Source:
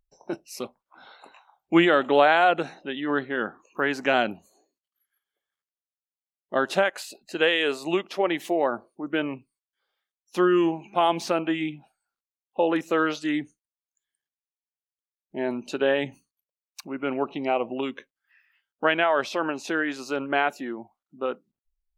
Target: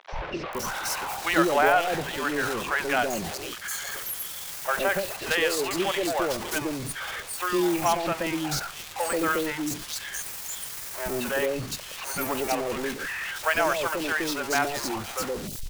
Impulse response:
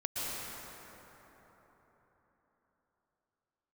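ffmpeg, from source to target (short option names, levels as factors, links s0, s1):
-filter_complex "[0:a]aeval=exprs='val(0)+0.5*0.0708*sgn(val(0))':c=same,equalizer=f=260:w=1.7:g=-7.5,acrossover=split=570|3400[s0][s1][s2];[s0]adelay=170[s3];[s2]adelay=720[s4];[s3][s1][s4]amix=inputs=3:normalize=0,atempo=1.4,volume=0.891"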